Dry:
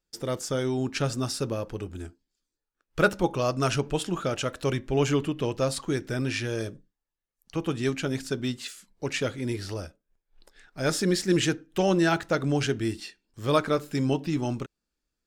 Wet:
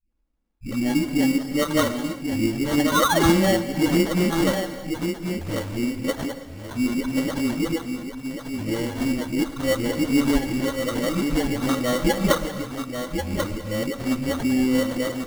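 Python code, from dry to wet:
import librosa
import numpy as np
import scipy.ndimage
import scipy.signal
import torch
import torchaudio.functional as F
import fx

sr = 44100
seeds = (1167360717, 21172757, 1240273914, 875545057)

p1 = np.flip(x).copy()
p2 = fx.high_shelf(p1, sr, hz=6700.0, db=-6.0)
p3 = p2 + fx.echo_single(p2, sr, ms=1089, db=-6.5, dry=0)
p4 = fx.spec_paint(p3, sr, seeds[0], shape='rise', start_s=2.82, length_s=0.38, low_hz=930.0, high_hz=2800.0, level_db=-21.0)
p5 = fx.low_shelf(p4, sr, hz=300.0, db=10.0)
p6 = p5 + 0.75 * np.pad(p5, (int(3.7 * sr / 1000.0), 0))[:len(p5)]
p7 = fx.dispersion(p6, sr, late='highs', ms=109.0, hz=320.0)
p8 = fx.sample_hold(p7, sr, seeds[1], rate_hz=2500.0, jitter_pct=0)
p9 = fx.rev_gated(p8, sr, seeds[2], gate_ms=350, shape='flat', drr_db=10.5)
y = F.gain(torch.from_numpy(p9), -2.0).numpy()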